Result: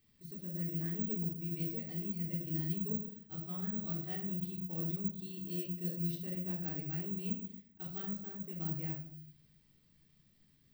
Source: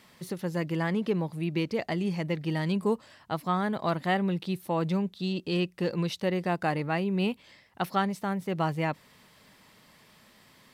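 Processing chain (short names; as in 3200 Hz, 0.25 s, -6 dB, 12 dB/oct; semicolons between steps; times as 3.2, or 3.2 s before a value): notches 50/100/150 Hz; shoebox room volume 940 m³, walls furnished, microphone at 3.7 m; careless resampling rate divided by 2×, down filtered, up zero stuff; passive tone stack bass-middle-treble 10-0-1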